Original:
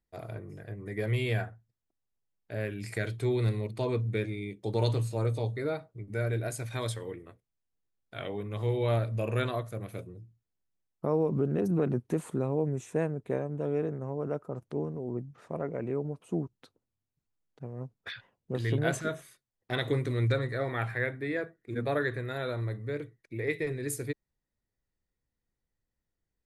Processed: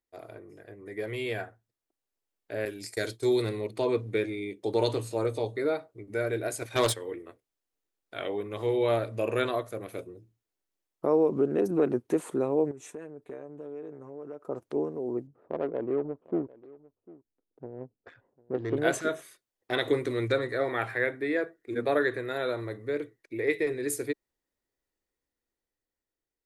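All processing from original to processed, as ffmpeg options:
-filter_complex "[0:a]asettb=1/sr,asplit=3[a][b][c];[a]atrim=end=2.654[d];[b]atrim=start=2.65:end=3.42,asetpts=PTS-STARTPTS,afade=t=in:d=0.004:c=qsin,afade=t=out:st=0.766:d=0.004:c=qsin,agate=range=-33dB:threshold=-34dB:ratio=3:release=100:detection=peak,highshelf=f=3.6k:t=q:w=1.5:g=10[e];[c]atrim=start=3.416[f];[d][e]acrossfade=d=0.004:c1=hsin:c2=qsin[g];[g][f]acrossfade=d=0.004:c1=qsin:c2=hsin,asettb=1/sr,asplit=3[h][i][j];[h]atrim=end=6.594[k];[i]atrim=start=6.59:end=7.12,asetpts=PTS-STARTPTS,afade=t=in:d=0.004:c=qsin,afade=t=out:st=0.526:d=0.004:c=qsin,agate=range=-12dB:threshold=-35dB:ratio=16:release=100:detection=peak,aeval=exprs='0.0891*sin(PI/2*2*val(0)/0.0891)':c=same[l];[j]atrim=start=7.116[m];[k][l]acrossfade=d=0.004:c1=hsin:c2=qsin[n];[n][m]acrossfade=d=0.004:c1=qsin:c2=hsin,asettb=1/sr,asplit=3[o][p][q];[o]atrim=end=12.714[r];[p]atrim=start=12.71:end=14.45,asetpts=PTS-STARTPTS,afade=t=in:d=0.004:c=qsin,afade=t=out:st=1.736:d=0.004:c=qsin,agate=range=-10dB:threshold=-52dB:ratio=16:release=100:detection=peak,aecho=1:1:6.8:0.58,atrim=end_sample=76734,acompressor=threshold=-40dB:ratio=8:attack=3.2:release=140:knee=1:detection=peak[s];[q]atrim=start=14.446[t];[r][s]acrossfade=d=0.004:c1=hsin:c2=qsin[u];[u][t]acrossfade=d=0.004:c1=qsin:c2=hsin,asettb=1/sr,asplit=3[v][w][x];[v]atrim=end=15.274[y];[w]atrim=start=15.27:end=18.77,asetpts=PTS-STARTPTS,afade=t=in:d=0.004:c=qsin,afade=t=out:st=3.496:d=0.004:c=qsin,adynamicsmooth=sensitivity=1.5:basefreq=530,aecho=1:1:749:0.0841,atrim=end_sample=154350[z];[x]atrim=start=18.766[aa];[y][z]acrossfade=d=0.004:c1=hsin:c2=qsin[ab];[ab][aa]acrossfade=d=0.004:c1=qsin:c2=hsin,lowshelf=f=230:t=q:w=1.5:g=-9.5,dynaudnorm=f=460:g=7:m=6dB,volume=-3dB"

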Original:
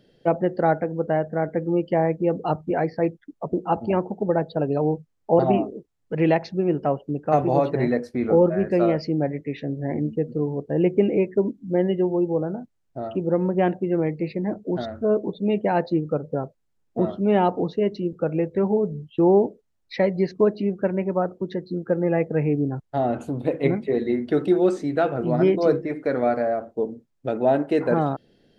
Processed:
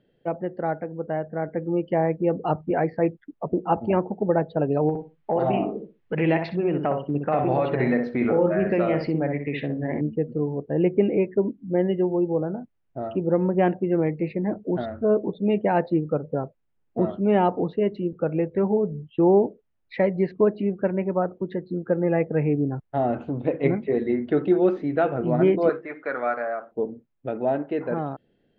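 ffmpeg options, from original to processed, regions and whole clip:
-filter_complex "[0:a]asettb=1/sr,asplit=3[a][b][c];[a]atrim=end=4.894[d];[b]atrim=start=4.89:end=10.01,asetpts=PTS-STARTPTS,afade=t=in:d=0.004:c=qsin,afade=t=out:st=5.116:d=0.004:c=qsin,equalizer=f=3.2k:w=0.35:g=8.5,acompressor=threshold=-22dB:ratio=3:attack=3.2:release=140:knee=1:detection=peak,asplit=2[e][f];[f]adelay=62,lowpass=f=1.3k:p=1,volume=-4dB,asplit=2[g][h];[h]adelay=62,lowpass=f=1.3k:p=1,volume=0.22,asplit=2[i][j];[j]adelay=62,lowpass=f=1.3k:p=1,volume=0.22[k];[e][g][i][k]amix=inputs=4:normalize=0,atrim=end_sample=225792[l];[c]atrim=start=10.006[m];[d][l]acrossfade=d=0.004:c1=hsin:c2=qsin[n];[n][m]acrossfade=d=0.004:c1=qsin:c2=hsin,asettb=1/sr,asplit=3[o][p][q];[o]atrim=end=25.694[r];[p]atrim=start=25.69:end=26.72,asetpts=PTS-STARTPTS,afade=t=in:d=0.004:c=qsin,afade=t=out:st=1.026:d=0.004:c=qsin,highpass=f=980:p=1,equalizer=f=1.3k:t=o:w=0.77:g=9[s];[q]atrim=start=26.716[t];[r][s]acrossfade=d=0.004:c1=hsin:c2=qsin[u];[u][t]acrossfade=d=0.004:c1=qsin:c2=hsin,lowpass=f=3.1k:w=0.5412,lowpass=f=3.1k:w=1.3066,dynaudnorm=f=180:g=17:m=11.5dB,volume=-7dB"

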